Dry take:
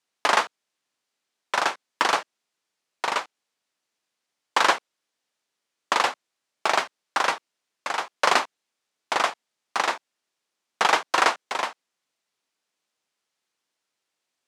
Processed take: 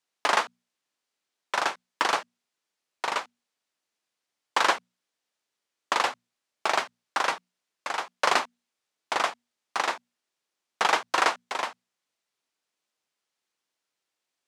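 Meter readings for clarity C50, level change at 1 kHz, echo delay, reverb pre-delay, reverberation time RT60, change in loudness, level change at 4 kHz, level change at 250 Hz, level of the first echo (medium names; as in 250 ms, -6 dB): no reverb, -3.0 dB, no echo, no reverb, no reverb, -3.0 dB, -3.0 dB, -3.0 dB, no echo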